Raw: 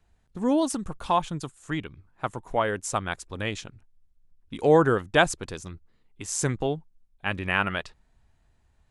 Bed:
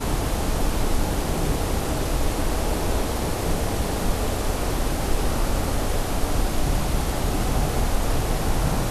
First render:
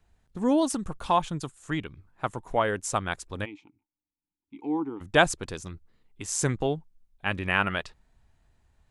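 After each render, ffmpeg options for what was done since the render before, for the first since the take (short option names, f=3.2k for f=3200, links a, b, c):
-filter_complex "[0:a]asplit=3[a][b][c];[a]afade=t=out:st=3.44:d=0.02[d];[b]asplit=3[e][f][g];[e]bandpass=f=300:t=q:w=8,volume=0dB[h];[f]bandpass=f=870:t=q:w=8,volume=-6dB[i];[g]bandpass=f=2.24k:t=q:w=8,volume=-9dB[j];[h][i][j]amix=inputs=3:normalize=0,afade=t=in:st=3.44:d=0.02,afade=t=out:st=5:d=0.02[k];[c]afade=t=in:st=5:d=0.02[l];[d][k][l]amix=inputs=3:normalize=0"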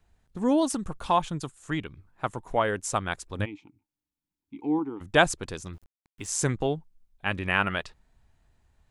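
-filter_complex "[0:a]asettb=1/sr,asplit=3[a][b][c];[a]atrim=end=3.394[d];[b]atrim=start=3.39:end=4.79,asetpts=PTS-STARTPTS,afade=t=in:d=0.004:c=qsin,afade=t=out:st=1.396:d=0.004:c=qsin,equalizer=f=100:t=o:w=2.7:g=7[e];[c]atrim=start=4.786[f];[d][e]acrossfade=d=0.004:c1=hsin:c2=qsin[g];[g][f]acrossfade=d=0.004:c1=qsin:c2=hsin,asettb=1/sr,asplit=3[h][i][j];[h]atrim=end=5.734[k];[i]atrim=start=5.73:end=6.32,asetpts=PTS-STARTPTS,afade=t=in:d=0.004:c=qsin,afade=t=out:st=0.586:d=0.004:c=qsin,aeval=exprs='val(0)*gte(abs(val(0)),0.00211)':c=same[l];[j]atrim=start=6.316[m];[k][l]acrossfade=d=0.004:c1=hsin:c2=qsin[n];[n][m]acrossfade=d=0.004:c1=qsin:c2=hsin"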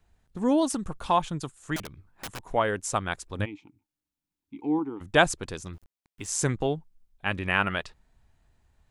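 -filter_complex "[0:a]asettb=1/sr,asplit=3[a][b][c];[a]atrim=end=1.764[d];[b]atrim=start=1.76:end=2.4,asetpts=PTS-STARTPTS,afade=t=in:d=0.004:c=qsin,afade=t=out:st=0.636:d=0.004:c=qsin,aeval=exprs='(mod(31.6*val(0)+1,2)-1)/31.6':c=same[e];[c]atrim=start=2.396[f];[d][e]acrossfade=d=0.004:c1=hsin:c2=qsin[g];[g][f]acrossfade=d=0.004:c1=qsin:c2=hsin"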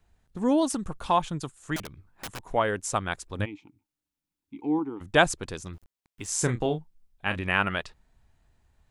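-filter_complex "[0:a]asettb=1/sr,asplit=3[a][b][c];[a]atrim=end=6.284[d];[b]atrim=start=6.28:end=7.41,asetpts=PTS-STARTPTS,afade=t=in:d=0.004:c=qsin,afade=t=out:st=1.126:d=0.004:c=qsin,asplit=2[e][f];[f]adelay=33,volume=-9dB[g];[e][g]amix=inputs=2:normalize=0,atrim=end_sample=49833[h];[c]atrim=start=7.406[i];[d][h]acrossfade=d=0.004:c1=hsin:c2=qsin[j];[j][i]acrossfade=d=0.004:c1=qsin:c2=hsin"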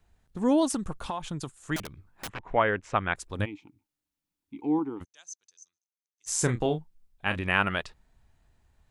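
-filter_complex "[0:a]asettb=1/sr,asplit=3[a][b][c];[a]atrim=end=1.064[d];[b]atrim=start=1.06:end=1.59,asetpts=PTS-STARTPTS,afade=t=in:d=0.004:c=qsin,afade=t=out:st=0.526:d=0.004:c=qsin,acompressor=threshold=-28dB:ratio=10:attack=3.2:release=140:knee=1:detection=peak[e];[c]atrim=start=1.586[f];[d][e]acrossfade=d=0.004:c1=hsin:c2=qsin[g];[g][f]acrossfade=d=0.004:c1=qsin:c2=hsin,asettb=1/sr,asplit=3[h][i][j];[h]atrim=end=2.294[k];[i]atrim=start=2.29:end=3.16,asetpts=PTS-STARTPTS,afade=t=in:d=0.004:c=qsin,afade=t=out:st=0.866:d=0.004:c=qsin,lowpass=f=2.3k:t=q:w=1.6[l];[j]atrim=start=3.156[m];[k][l]acrossfade=d=0.004:c1=hsin:c2=qsin[n];[n][m]acrossfade=d=0.004:c1=qsin:c2=hsin,asplit=3[o][p][q];[o]afade=t=out:st=5.03:d=0.02[r];[p]bandpass=f=6.2k:t=q:w=17,afade=t=in:st=5.03:d=0.02,afade=t=out:st=6.26:d=0.02[s];[q]afade=t=in:st=6.26:d=0.02[t];[r][s][t]amix=inputs=3:normalize=0"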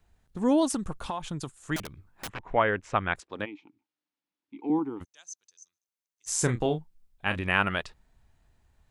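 -filter_complex "[0:a]asettb=1/sr,asplit=3[a][b][c];[a]atrim=end=3.204[d];[b]atrim=start=3.2:end=4.7,asetpts=PTS-STARTPTS,afade=t=in:d=0.004:c=qsin,afade=t=out:st=1.496:d=0.004:c=qsin,highpass=260,lowpass=4k[e];[c]atrim=start=4.696[f];[d][e]acrossfade=d=0.004:c1=hsin:c2=qsin[g];[g][f]acrossfade=d=0.004:c1=qsin:c2=hsin"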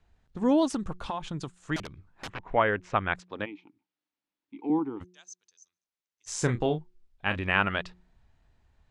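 -af "lowpass=5.5k,bandreject=f=180.3:t=h:w=4,bandreject=f=360.6:t=h:w=4"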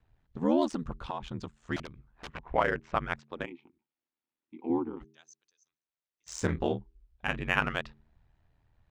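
-af "adynamicsmooth=sensitivity=5:basefreq=5.2k,aeval=exprs='val(0)*sin(2*PI*40*n/s)':c=same"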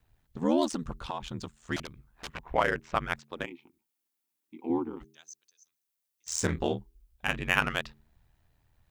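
-af "crystalizer=i=2.5:c=0"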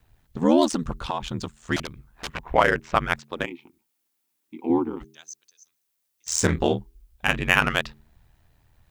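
-af "volume=7.5dB,alimiter=limit=-2dB:level=0:latency=1"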